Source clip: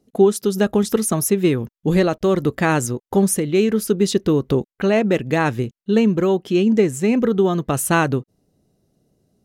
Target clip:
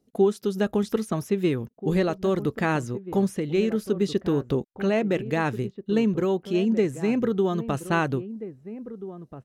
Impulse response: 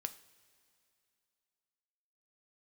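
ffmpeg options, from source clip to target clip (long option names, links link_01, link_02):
-filter_complex "[0:a]acrossover=split=4400[link_01][link_02];[link_02]acompressor=threshold=-39dB:ratio=4:attack=1:release=60[link_03];[link_01][link_03]amix=inputs=2:normalize=0,asplit=2[link_04][link_05];[link_05]adelay=1633,volume=-13dB,highshelf=frequency=4000:gain=-36.7[link_06];[link_04][link_06]amix=inputs=2:normalize=0,volume=-6.5dB"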